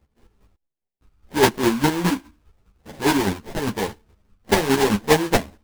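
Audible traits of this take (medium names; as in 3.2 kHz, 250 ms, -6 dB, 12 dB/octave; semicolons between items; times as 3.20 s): chopped level 4.9 Hz, depth 60%, duty 25%; aliases and images of a low sample rate 1.3 kHz, jitter 20%; a shimmering, thickened sound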